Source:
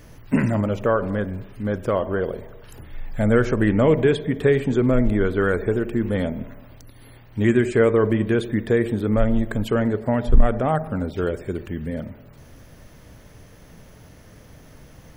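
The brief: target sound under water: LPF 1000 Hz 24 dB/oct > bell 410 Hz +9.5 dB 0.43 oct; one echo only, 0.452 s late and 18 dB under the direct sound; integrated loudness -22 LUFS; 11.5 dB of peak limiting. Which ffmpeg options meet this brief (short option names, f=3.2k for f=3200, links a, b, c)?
-af "alimiter=limit=-14dB:level=0:latency=1,lowpass=f=1k:w=0.5412,lowpass=f=1k:w=1.3066,equalizer=f=410:t=o:w=0.43:g=9.5,aecho=1:1:452:0.126,volume=-0.5dB"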